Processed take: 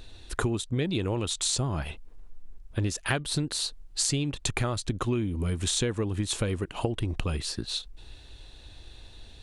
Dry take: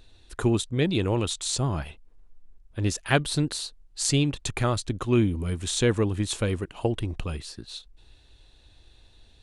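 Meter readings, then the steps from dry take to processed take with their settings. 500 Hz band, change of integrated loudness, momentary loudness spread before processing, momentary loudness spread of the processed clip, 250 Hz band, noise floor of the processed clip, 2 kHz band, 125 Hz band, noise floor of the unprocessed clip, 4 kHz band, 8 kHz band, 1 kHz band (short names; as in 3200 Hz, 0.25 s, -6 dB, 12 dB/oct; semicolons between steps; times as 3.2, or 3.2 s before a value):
-5.0 dB, -3.0 dB, 13 LU, 13 LU, -4.5 dB, -49 dBFS, -2.5 dB, -3.0 dB, -57 dBFS, +0.5 dB, +0.5 dB, -3.0 dB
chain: compressor 12:1, threshold -32 dBFS, peak gain reduction 17 dB; gain +7.5 dB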